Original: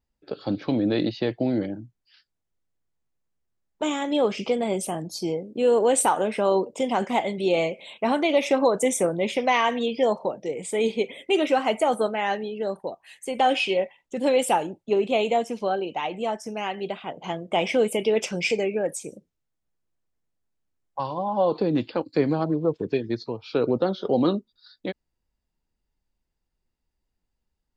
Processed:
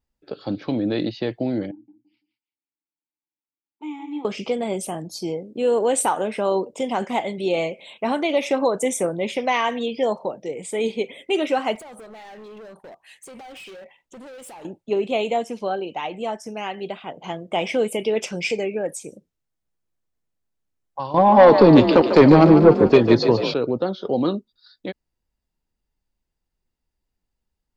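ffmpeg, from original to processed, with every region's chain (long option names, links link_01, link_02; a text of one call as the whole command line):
ffmpeg -i in.wav -filter_complex "[0:a]asettb=1/sr,asplit=3[link_01][link_02][link_03];[link_01]atrim=end=1.714[link_04];[link_02]atrim=start=1.71:end=4.25,asetpts=PTS-STARTPTS,afade=type=in:duration=0.004:curve=qsin,afade=type=out:start_time=2.536:duration=0.004:curve=qsin,asplit=3[link_05][link_06][link_07];[link_05]bandpass=frequency=300:width_type=q:width=8,volume=0dB[link_08];[link_06]bandpass=frequency=870:width_type=q:width=8,volume=-6dB[link_09];[link_07]bandpass=frequency=2240:width_type=q:width=8,volume=-9dB[link_10];[link_08][link_09][link_10]amix=inputs=3:normalize=0,tiltshelf=frequency=1100:gain=-4,aecho=1:1:168|336|504:0.316|0.0759|0.0182,atrim=end_sample=112014[link_11];[link_03]atrim=start=4.246[link_12];[link_04][link_11]acrossfade=duration=0.004:curve1=hsin:curve2=qsin[link_13];[link_13][link_12]acrossfade=duration=0.004:curve1=qsin:curve2=hsin,asettb=1/sr,asplit=3[link_14][link_15][link_16];[link_14]atrim=end=11.754[link_17];[link_15]atrim=start=11.75:end=14.65,asetpts=PTS-STARTPTS,afade=type=in:duration=0.004:curve=qsin,afade=type=out:start_time=2.896:duration=0.004:curve=qsin,acompressor=threshold=-32dB:ratio=12:attack=3.2:release=140:knee=1:detection=peak,asoftclip=type=hard:threshold=-38.5dB[link_18];[link_16]atrim=start=14.646[link_19];[link_17][link_18]acrossfade=duration=0.004:curve1=hsin:curve2=qsin[link_20];[link_20][link_19]acrossfade=duration=0.004:curve1=qsin:curve2=hsin,asettb=1/sr,asplit=3[link_21][link_22][link_23];[link_21]atrim=end=21.144[link_24];[link_22]atrim=start=21.14:end=23.54,asetpts=PTS-STARTPTS,afade=type=in:duration=0.004:curve=qsin,afade=type=out:start_time=2.396:duration=0.004:curve=qsin,acontrast=49,aeval=exprs='0.562*sin(PI/2*1.58*val(0)/0.562)':channel_layout=same,asplit=8[link_25][link_26][link_27][link_28][link_29][link_30][link_31][link_32];[link_26]adelay=147,afreqshift=40,volume=-9dB[link_33];[link_27]adelay=294,afreqshift=80,volume=-14dB[link_34];[link_28]adelay=441,afreqshift=120,volume=-19.1dB[link_35];[link_29]adelay=588,afreqshift=160,volume=-24.1dB[link_36];[link_30]adelay=735,afreqshift=200,volume=-29.1dB[link_37];[link_31]adelay=882,afreqshift=240,volume=-34.2dB[link_38];[link_32]adelay=1029,afreqshift=280,volume=-39.2dB[link_39];[link_25][link_33][link_34][link_35][link_36][link_37][link_38][link_39]amix=inputs=8:normalize=0,atrim=end_sample=105840[link_40];[link_23]atrim=start=23.536[link_41];[link_24][link_40]acrossfade=duration=0.004:curve1=hsin:curve2=qsin[link_42];[link_42][link_41]acrossfade=duration=0.004:curve1=qsin:curve2=hsin" out.wav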